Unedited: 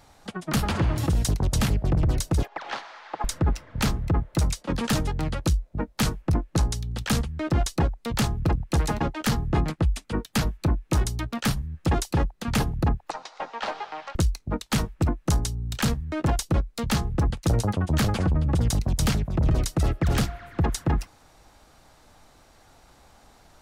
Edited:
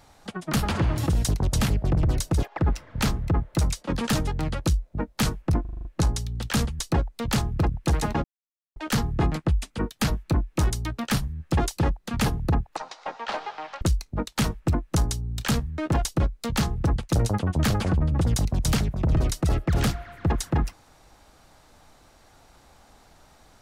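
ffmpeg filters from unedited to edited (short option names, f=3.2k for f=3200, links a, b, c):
-filter_complex "[0:a]asplit=10[a][b][c][d][e][f][g][h][i][j];[a]atrim=end=2.592[k];[b]atrim=start=3.388:end=6.452[l];[c]atrim=start=6.408:end=6.452[m];[d]atrim=start=6.408:end=6.452[n];[e]atrim=start=6.408:end=6.452[o];[f]atrim=start=6.408:end=6.452[p];[g]atrim=start=6.408:end=6.452[q];[h]atrim=start=6.408:end=7.352[r];[i]atrim=start=7.648:end=9.1,asetpts=PTS-STARTPTS,afade=t=out:st=1.448:d=0.004:c=hsin,apad=pad_dur=0.52[s];[j]atrim=start=9.1,asetpts=PTS-STARTPTS,afade=t=in:d=0.004:c=hsin[t];[k][l]acrossfade=d=0.004:c1=hsin:c2=hsin[u];[u][m]acrossfade=d=0.004:c1=hsin:c2=hsin[v];[v][n]acrossfade=d=0.004:c1=hsin:c2=hsin[w];[w][o]acrossfade=d=0.004:c1=hsin:c2=hsin[x];[x][p]acrossfade=d=0.004:c1=hsin:c2=hsin[y];[y][q]acrossfade=d=0.004:c1=hsin:c2=hsin[z];[z][r]acrossfade=d=0.004:c1=hsin:c2=hsin[aa];[s][t]concat=n=2:v=0:a=1[ab];[aa][ab]acrossfade=d=0.004:c1=hsin:c2=hsin"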